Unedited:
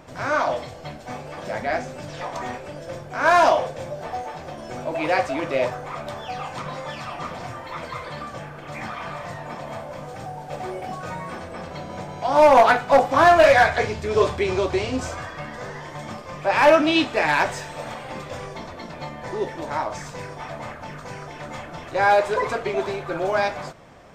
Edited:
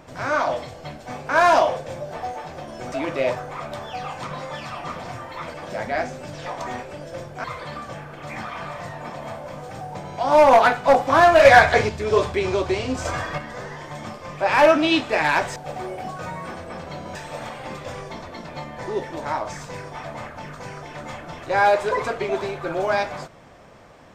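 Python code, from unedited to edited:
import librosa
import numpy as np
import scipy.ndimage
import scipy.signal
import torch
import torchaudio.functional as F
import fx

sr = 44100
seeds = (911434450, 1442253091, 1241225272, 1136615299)

y = fx.edit(x, sr, fx.move(start_s=1.29, length_s=1.9, to_s=7.89),
    fx.cut(start_s=4.82, length_s=0.45),
    fx.move(start_s=10.4, length_s=1.59, to_s=17.6),
    fx.clip_gain(start_s=13.49, length_s=0.44, db=4.5),
    fx.clip_gain(start_s=15.09, length_s=0.33, db=6.0), tone=tone)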